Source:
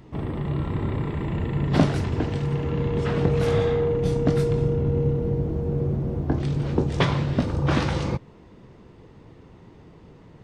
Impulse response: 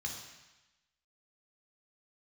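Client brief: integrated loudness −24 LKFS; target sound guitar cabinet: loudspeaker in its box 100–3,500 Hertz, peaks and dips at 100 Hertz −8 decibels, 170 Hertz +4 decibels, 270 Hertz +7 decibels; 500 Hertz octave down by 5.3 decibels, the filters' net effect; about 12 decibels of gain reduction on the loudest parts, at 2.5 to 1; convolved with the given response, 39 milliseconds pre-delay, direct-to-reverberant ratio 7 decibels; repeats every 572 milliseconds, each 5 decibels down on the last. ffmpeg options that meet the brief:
-filter_complex "[0:a]equalizer=frequency=500:width_type=o:gain=-6.5,acompressor=threshold=-33dB:ratio=2.5,aecho=1:1:572|1144|1716|2288|2860|3432|4004:0.562|0.315|0.176|0.0988|0.0553|0.031|0.0173,asplit=2[link_01][link_02];[1:a]atrim=start_sample=2205,adelay=39[link_03];[link_02][link_03]afir=irnorm=-1:irlink=0,volume=-7.5dB[link_04];[link_01][link_04]amix=inputs=2:normalize=0,highpass=100,equalizer=frequency=100:width_type=q:width=4:gain=-8,equalizer=frequency=170:width_type=q:width=4:gain=4,equalizer=frequency=270:width_type=q:width=4:gain=7,lowpass=frequency=3500:width=0.5412,lowpass=frequency=3500:width=1.3066,volume=6dB"

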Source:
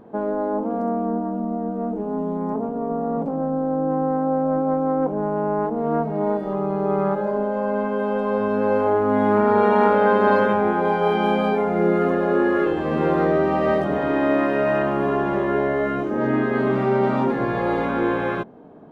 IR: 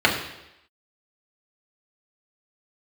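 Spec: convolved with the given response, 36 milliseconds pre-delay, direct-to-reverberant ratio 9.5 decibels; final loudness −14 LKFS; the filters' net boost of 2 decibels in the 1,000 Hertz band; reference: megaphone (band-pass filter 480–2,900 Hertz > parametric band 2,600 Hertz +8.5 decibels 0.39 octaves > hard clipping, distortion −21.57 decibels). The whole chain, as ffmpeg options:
-filter_complex "[0:a]equalizer=frequency=1000:width_type=o:gain=3,asplit=2[link_01][link_02];[1:a]atrim=start_sample=2205,adelay=36[link_03];[link_02][link_03]afir=irnorm=-1:irlink=0,volume=-30dB[link_04];[link_01][link_04]amix=inputs=2:normalize=0,highpass=480,lowpass=2900,equalizer=frequency=2600:width_type=o:width=0.39:gain=8.5,asoftclip=type=hard:threshold=-11dB,volume=9dB"

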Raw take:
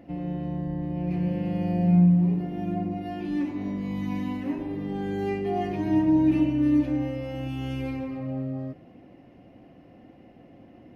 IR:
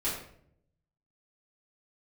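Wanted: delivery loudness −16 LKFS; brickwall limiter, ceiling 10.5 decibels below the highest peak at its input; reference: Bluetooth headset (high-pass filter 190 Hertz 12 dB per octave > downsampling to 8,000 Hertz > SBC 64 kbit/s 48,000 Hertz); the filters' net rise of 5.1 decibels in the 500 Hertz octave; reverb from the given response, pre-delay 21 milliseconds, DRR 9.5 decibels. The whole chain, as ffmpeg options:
-filter_complex "[0:a]equalizer=frequency=500:width_type=o:gain=7.5,alimiter=limit=-20.5dB:level=0:latency=1,asplit=2[link_01][link_02];[1:a]atrim=start_sample=2205,adelay=21[link_03];[link_02][link_03]afir=irnorm=-1:irlink=0,volume=-16dB[link_04];[link_01][link_04]amix=inputs=2:normalize=0,highpass=190,aresample=8000,aresample=44100,volume=14dB" -ar 48000 -c:a sbc -b:a 64k

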